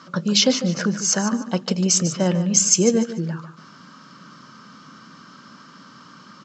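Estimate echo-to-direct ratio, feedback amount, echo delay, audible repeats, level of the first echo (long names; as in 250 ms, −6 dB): −11.5 dB, 25%, 148 ms, 2, −12.0 dB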